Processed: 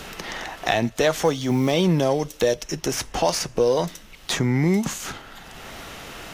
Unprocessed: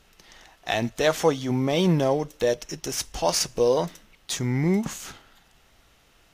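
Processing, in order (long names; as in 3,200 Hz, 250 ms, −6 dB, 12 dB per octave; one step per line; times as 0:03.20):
in parallel at −9.5 dB: hard clipping −16 dBFS, distortion −16 dB
0:01.24–0:01.72: on the sum: log-companded quantiser 8 bits
multiband upward and downward compressor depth 70%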